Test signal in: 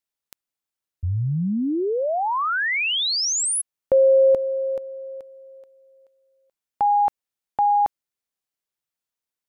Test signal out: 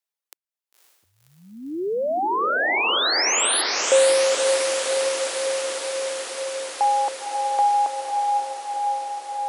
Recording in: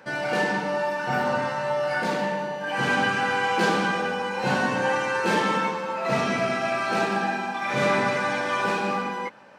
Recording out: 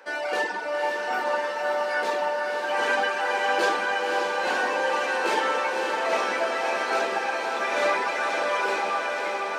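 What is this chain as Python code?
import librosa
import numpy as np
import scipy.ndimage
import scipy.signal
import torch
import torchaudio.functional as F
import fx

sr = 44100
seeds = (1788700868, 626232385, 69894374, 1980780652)

y = fx.dereverb_blind(x, sr, rt60_s=1.5)
y = scipy.signal.sosfilt(scipy.signal.butter(4, 350.0, 'highpass', fs=sr, output='sos'), y)
y = fx.echo_diffused(y, sr, ms=540, feedback_pct=77, wet_db=-4.0)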